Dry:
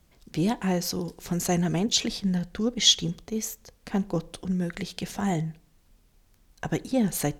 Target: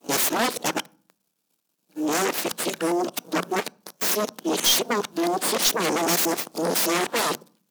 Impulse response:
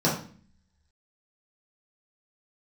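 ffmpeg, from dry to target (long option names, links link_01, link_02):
-filter_complex "[0:a]areverse,asuperstop=centerf=2000:order=20:qfactor=3.1,aemphasis=mode=production:type=cd,asplit=2[link_01][link_02];[link_02]asoftclip=type=tanh:threshold=-24.5dB,volume=-8dB[link_03];[link_01][link_03]amix=inputs=2:normalize=0,asetrate=42336,aresample=44100,aeval=exprs='0.211*(cos(1*acos(clip(val(0)/0.211,-1,1)))-cos(1*PI/2))+0.075*(cos(3*acos(clip(val(0)/0.211,-1,1)))-cos(3*PI/2))+0.106*(cos(8*acos(clip(val(0)/0.211,-1,1)))-cos(8*PI/2))':channel_layout=same,highpass=frequency=190:width=0.5412,highpass=frequency=190:width=1.3066,asoftclip=type=hard:threshold=-15.5dB,asplit=2[link_04][link_05];[1:a]atrim=start_sample=2205[link_06];[link_05][link_06]afir=irnorm=-1:irlink=0,volume=-35.5dB[link_07];[link_04][link_07]amix=inputs=2:normalize=0"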